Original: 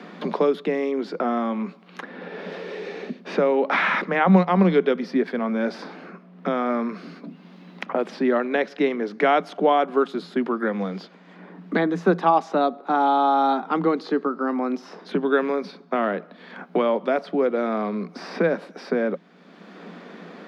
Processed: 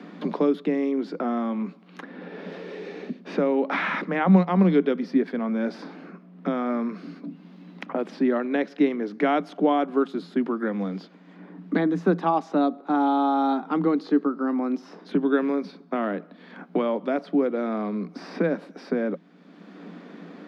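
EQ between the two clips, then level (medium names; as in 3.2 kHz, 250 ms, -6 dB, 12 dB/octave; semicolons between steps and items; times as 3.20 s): bass shelf 170 Hz +10.5 dB; peaking EQ 290 Hz +8.5 dB 0.24 oct; -5.5 dB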